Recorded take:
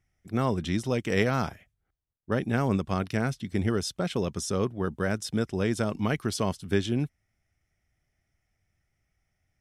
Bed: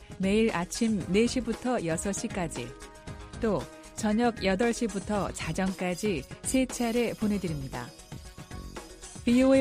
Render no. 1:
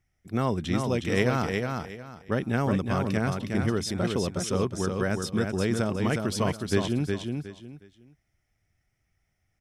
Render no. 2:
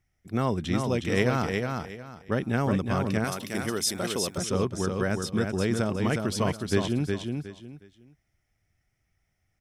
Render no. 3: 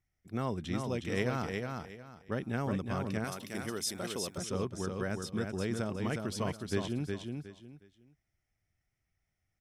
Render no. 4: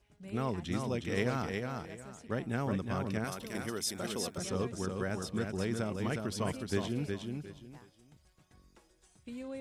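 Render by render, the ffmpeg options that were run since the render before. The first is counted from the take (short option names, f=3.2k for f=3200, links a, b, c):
-af "aecho=1:1:363|726|1089:0.596|0.149|0.0372"
-filter_complex "[0:a]asettb=1/sr,asplit=3[a][b][c];[a]atrim=end=3.244[d];[b]atrim=start=3.24:end=4.38,asetpts=PTS-STARTPTS,afade=t=in:d=0.004:c=qsin,afade=t=out:st=1.136:d=0.004:c=qsin,aemphasis=mode=production:type=bsi[e];[c]atrim=start=4.376[f];[d][e]acrossfade=d=0.004:c1=hsin:c2=qsin[g];[g][f]acrossfade=d=0.004:c1=qsin:c2=hsin"
-af "volume=-8dB"
-filter_complex "[1:a]volume=-21dB[a];[0:a][a]amix=inputs=2:normalize=0"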